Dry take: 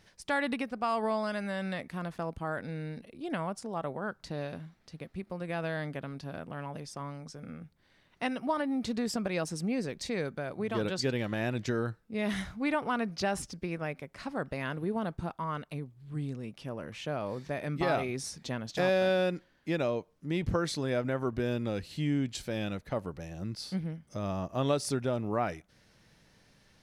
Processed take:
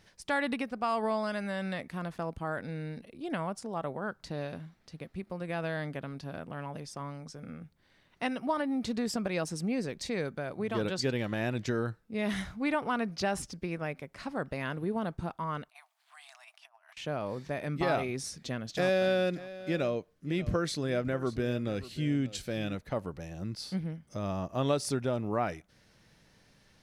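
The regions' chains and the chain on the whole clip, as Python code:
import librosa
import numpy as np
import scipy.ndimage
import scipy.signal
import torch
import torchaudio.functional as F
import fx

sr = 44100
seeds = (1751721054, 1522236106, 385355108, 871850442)

y = fx.chain(x, sr, fx.brickwall_highpass(low_hz=620.0),
    fx.over_compress(threshold_db=-56.0, ratio=-0.5), at=(15.69, 16.97))
y = fx.chain(y, sr, fx.peak_eq(hz=910.0, db=-8.0, octaves=0.31),
    fx.echo_single(ms=586, db=-16.5), at=(18.23, 22.75))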